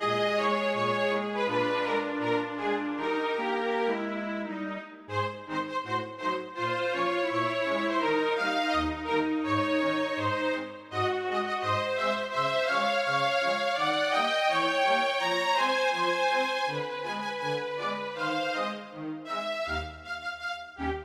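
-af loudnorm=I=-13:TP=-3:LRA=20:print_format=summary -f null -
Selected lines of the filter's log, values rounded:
Input Integrated:    -29.0 LUFS
Input True Peak:     -13.8 dBTP
Input LRA:             6.9 LU
Input Threshold:     -39.0 LUFS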